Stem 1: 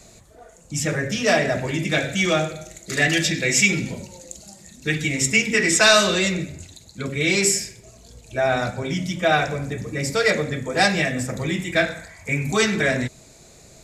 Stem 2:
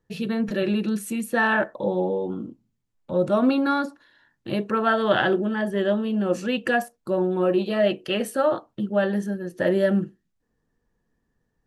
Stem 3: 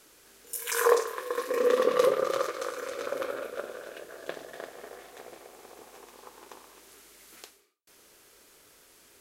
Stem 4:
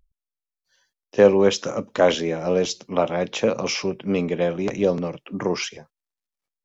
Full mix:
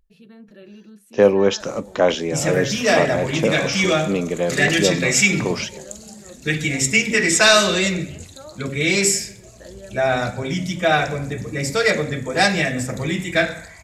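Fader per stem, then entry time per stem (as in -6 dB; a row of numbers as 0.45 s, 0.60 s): +1.5 dB, -19.5 dB, -16.5 dB, +0.5 dB; 1.60 s, 0.00 s, 2.00 s, 0.00 s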